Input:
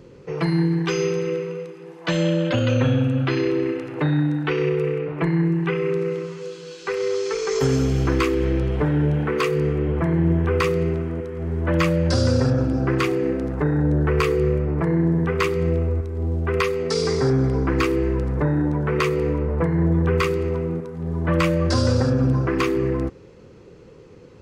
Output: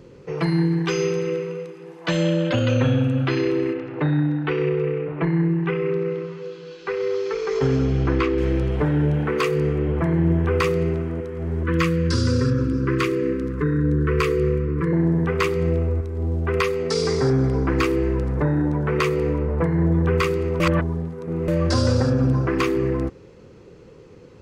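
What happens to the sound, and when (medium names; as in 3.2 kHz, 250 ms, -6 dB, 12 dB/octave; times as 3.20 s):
3.73–8.38 s: distance through air 180 m
11.63–14.93 s: Chebyshev band-stop 500–1000 Hz, order 4
20.60–21.48 s: reverse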